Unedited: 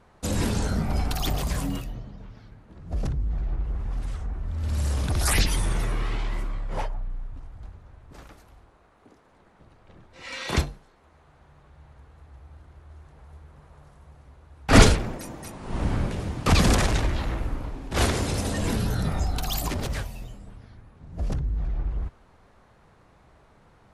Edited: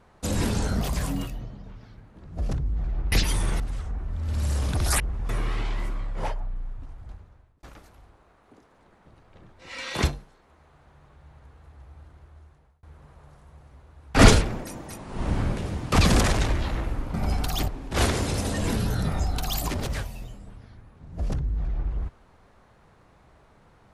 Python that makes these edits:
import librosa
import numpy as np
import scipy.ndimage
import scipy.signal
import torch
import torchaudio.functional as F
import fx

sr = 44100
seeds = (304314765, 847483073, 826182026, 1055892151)

y = fx.edit(x, sr, fx.move(start_s=0.81, length_s=0.54, to_s=17.68),
    fx.swap(start_s=3.66, length_s=0.29, other_s=5.35, other_length_s=0.48),
    fx.fade_out_span(start_s=7.64, length_s=0.53),
    fx.fade_out_span(start_s=12.47, length_s=0.9, curve='qsin'), tone=tone)